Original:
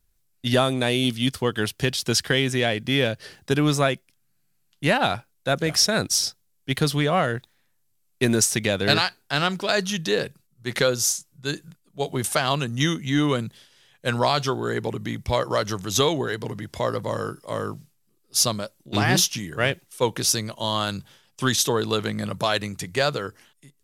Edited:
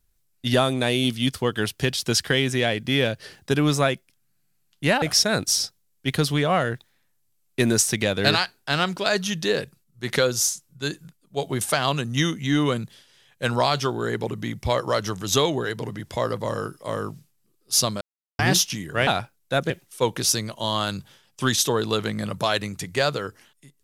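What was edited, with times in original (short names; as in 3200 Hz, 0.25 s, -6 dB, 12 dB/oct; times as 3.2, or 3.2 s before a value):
5.02–5.65 move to 19.7
18.64–19.02 mute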